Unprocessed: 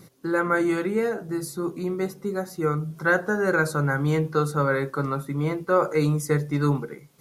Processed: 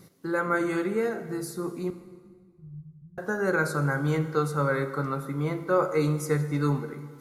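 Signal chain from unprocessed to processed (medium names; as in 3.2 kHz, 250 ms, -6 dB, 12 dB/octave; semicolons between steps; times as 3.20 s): 1.90–3.18 s: inverse Chebyshev low-pass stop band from 520 Hz, stop band 70 dB; plate-style reverb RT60 1.7 s, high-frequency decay 0.8×, DRR 9.5 dB; trim -3.5 dB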